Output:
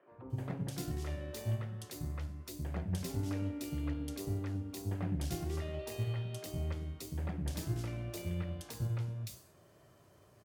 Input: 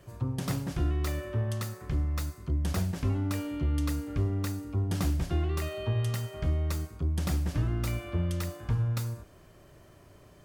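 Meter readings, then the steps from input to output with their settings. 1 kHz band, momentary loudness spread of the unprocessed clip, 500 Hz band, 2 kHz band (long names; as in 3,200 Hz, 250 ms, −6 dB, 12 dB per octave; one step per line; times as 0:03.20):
−8.5 dB, 4 LU, −6.0 dB, −8.0 dB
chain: high-pass filter 100 Hz 12 dB per octave
dynamic equaliser 1,200 Hz, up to −7 dB, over −57 dBFS, Q 2.1
flanger 1.8 Hz, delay 9.6 ms, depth 9.3 ms, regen +77%
three-band delay without the direct sound mids, lows, highs 110/300 ms, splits 270/2,300 Hz
harmonic generator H 7 −30 dB, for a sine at −22 dBFS
level +1 dB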